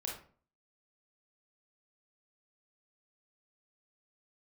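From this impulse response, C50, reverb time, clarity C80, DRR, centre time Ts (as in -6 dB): 4.0 dB, 0.45 s, 10.0 dB, -2.0 dB, 34 ms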